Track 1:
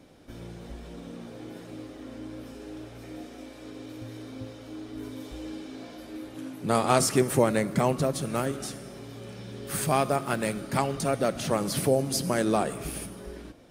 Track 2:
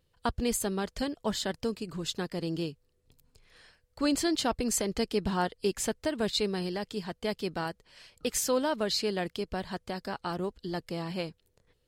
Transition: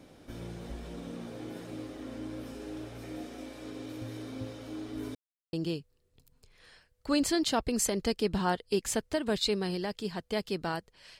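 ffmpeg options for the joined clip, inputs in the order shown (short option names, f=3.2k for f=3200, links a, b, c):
-filter_complex "[0:a]apad=whole_dur=11.19,atrim=end=11.19,asplit=2[a][b];[a]atrim=end=5.15,asetpts=PTS-STARTPTS,afade=t=out:st=5.146:d=0.004:c=hsin[c];[b]atrim=start=5.15:end=5.53,asetpts=PTS-STARTPTS,volume=0[d];[1:a]atrim=start=2.45:end=8.11,asetpts=PTS-STARTPTS,afade=t=in:d=0.004:c=hsin[e];[c][d][e]concat=n=3:v=0:a=1"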